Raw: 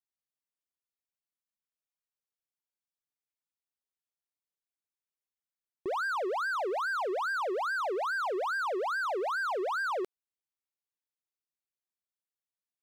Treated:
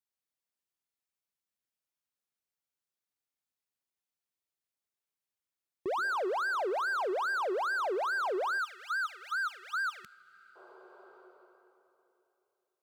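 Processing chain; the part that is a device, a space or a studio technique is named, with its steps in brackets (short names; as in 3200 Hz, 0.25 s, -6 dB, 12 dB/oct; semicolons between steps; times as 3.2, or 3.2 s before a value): HPF 50 Hz; compressed reverb return (on a send at -4 dB: reverb RT60 2.9 s, pre-delay 0.12 s + compressor 8:1, threshold -47 dBFS, peak gain reduction 18.5 dB); on the sum: spectral gain 8.58–10.56, 220–1200 Hz -30 dB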